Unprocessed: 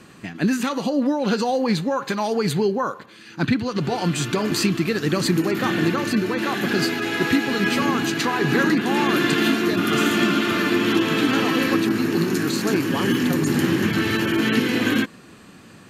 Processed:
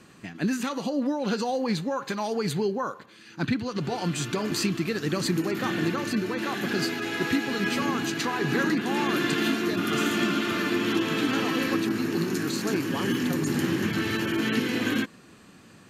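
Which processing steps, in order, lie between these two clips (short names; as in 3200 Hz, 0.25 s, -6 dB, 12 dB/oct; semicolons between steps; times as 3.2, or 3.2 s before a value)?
bell 6200 Hz +2 dB; gain -6 dB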